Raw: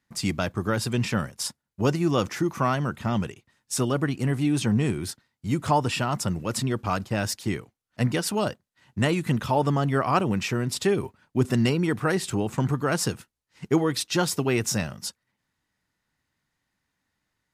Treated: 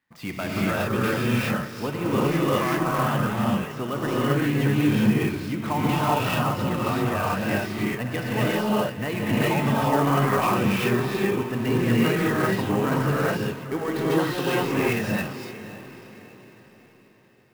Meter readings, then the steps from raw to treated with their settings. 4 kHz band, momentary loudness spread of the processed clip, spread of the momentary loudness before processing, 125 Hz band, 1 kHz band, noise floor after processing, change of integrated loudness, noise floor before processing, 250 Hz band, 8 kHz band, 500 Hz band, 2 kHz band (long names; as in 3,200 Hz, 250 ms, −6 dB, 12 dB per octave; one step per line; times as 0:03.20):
0.0 dB, 8 LU, 8 LU, +1.0 dB, +3.5 dB, −52 dBFS, +2.0 dB, −81 dBFS, +3.0 dB, −6.5 dB, +2.5 dB, +5.0 dB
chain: notch filter 1,400 Hz, Q 18
de-essing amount 75%
low-pass filter 2,500 Hz 12 dB per octave
spectral tilt +2.5 dB per octave
downward compressor, threshold −23 dBFS, peak gain reduction 6 dB
soft clipping −17.5 dBFS, distortion −21 dB
on a send: feedback delay with all-pass diffusion 578 ms, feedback 44%, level −14 dB
on the sum: reverb whose tail is shaped and stops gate 430 ms rising, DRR −7 dB
converter with an unsteady clock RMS 0.021 ms